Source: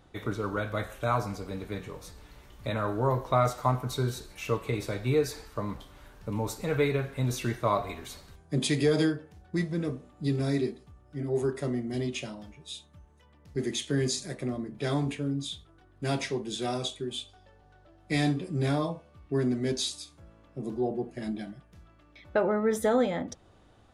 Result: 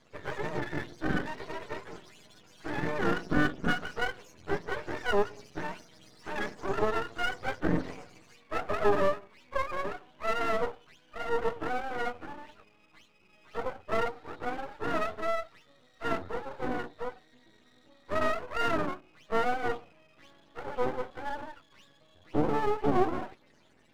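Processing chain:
frequency axis turned over on the octave scale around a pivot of 430 Hz
band-pass filter 210–7,000 Hz
half-wave rectification
level +5 dB

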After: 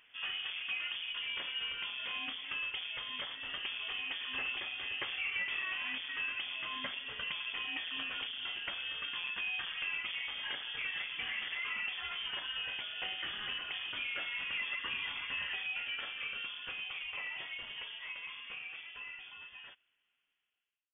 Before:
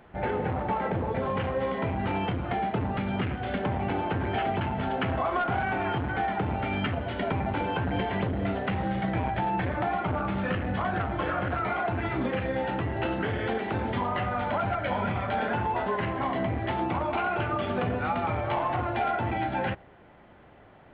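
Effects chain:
fade-out on the ending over 5.88 s
low-shelf EQ 260 Hz −10 dB
voice inversion scrambler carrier 3,400 Hz
level −8 dB

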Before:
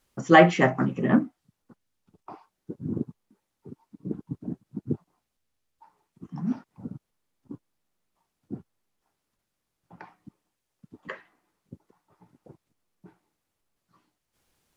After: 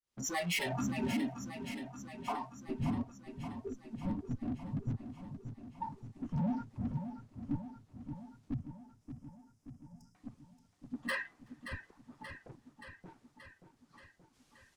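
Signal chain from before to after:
fade in at the beginning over 0.82 s
low-pass filter 6,600 Hz
high-shelf EQ 4,900 Hz +10.5 dB
in parallel at +2 dB: brickwall limiter −20 dBFS, peak gain reduction 11.5 dB
on the sum: downward compressor 5 to 1, threshold −26 dBFS, peak gain reduction 13.5 dB
tube saturation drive 42 dB, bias 0.5
0:03.07–0:03.84: phaser with its sweep stopped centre 370 Hz, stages 4
0:08.54–0:10.15: linear-phase brick-wall band-stop 210–4,800 Hz
on a send: echo with shifted repeats 375 ms, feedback 60%, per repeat −43 Hz, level −20.5 dB
on the sum: noise reduction from a noise print of the clip's start 17 dB
feedback echo with a swinging delay time 578 ms, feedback 65%, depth 50 cents, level −9.5 dB
level +12 dB

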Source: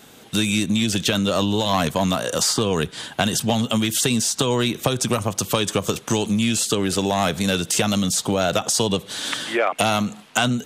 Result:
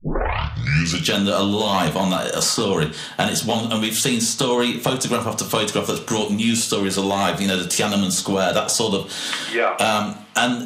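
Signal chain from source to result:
turntable start at the beginning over 1.11 s
low-shelf EQ 100 Hz −7.5 dB
on a send: convolution reverb RT60 0.50 s, pre-delay 4 ms, DRR 2 dB

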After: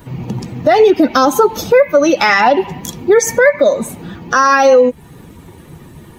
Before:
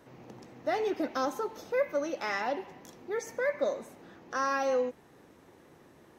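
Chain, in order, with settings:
spectral dynamics exaggerated over time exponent 1.5
downward compressor 4 to 1, threshold −39 dBFS, peak gain reduction 12.5 dB
boost into a limiter +35 dB
level −1 dB

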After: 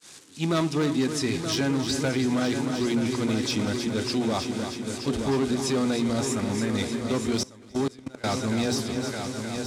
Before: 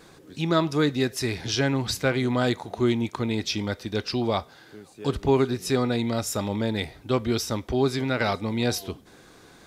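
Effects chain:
spike at every zero crossing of −24.5 dBFS
0:06.25–0:06.75: octave-band graphic EQ 500/1,000/2,000/4,000 Hz −6/−4/+10/−11 dB
downward expander −25 dBFS
low-pass filter 8,700 Hz 24 dB per octave
mains-hum notches 60/120/180/240/300/360/420 Hz
hard clipping −20 dBFS, distortion −12 dB
parametric band 250 Hz +6.5 dB 0.53 octaves
echo machine with several playback heads 308 ms, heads first and third, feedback 66%, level −10 dB
brickwall limiter −17.5 dBFS, peak gain reduction 5.5 dB
0:07.43–0:08.24: output level in coarse steps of 24 dB
high-pass filter 41 Hz

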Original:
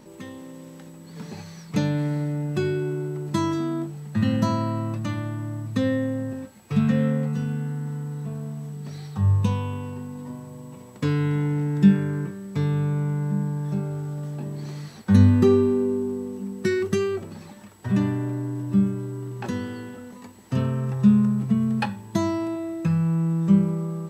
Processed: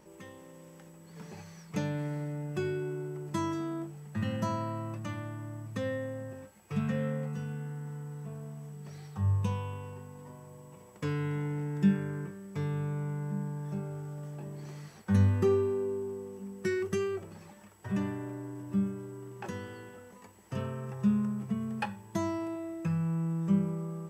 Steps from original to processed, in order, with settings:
thirty-one-band graphic EQ 125 Hz −8 dB, 250 Hz −12 dB, 4,000 Hz −9 dB
level −6.5 dB

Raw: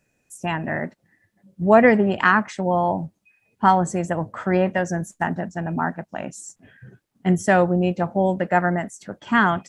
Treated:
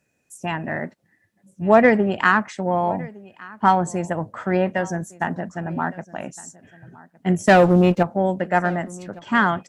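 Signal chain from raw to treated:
high-pass filter 69 Hz 6 dB per octave
0:07.47–0:08.03: leveller curve on the samples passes 2
single-tap delay 1,162 ms −21.5 dB
harmonic generator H 7 −36 dB, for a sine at −1.5 dBFS

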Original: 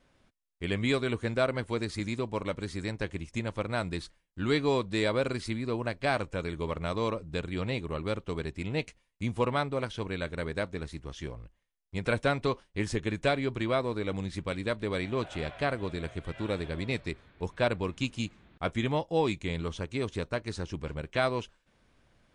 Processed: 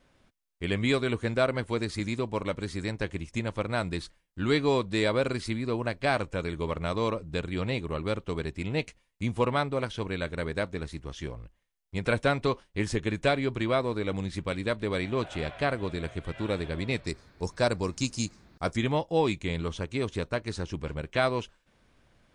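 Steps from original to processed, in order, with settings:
0:17.07–0:18.77: high shelf with overshoot 4,000 Hz +7.5 dB, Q 3
level +2 dB

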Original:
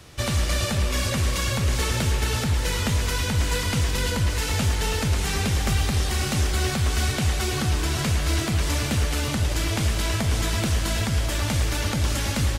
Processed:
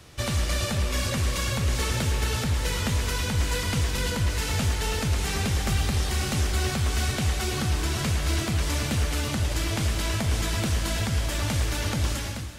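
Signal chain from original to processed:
fade-out on the ending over 0.51 s
echo machine with several playback heads 385 ms, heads first and second, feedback 57%, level −19.5 dB
level −2.5 dB

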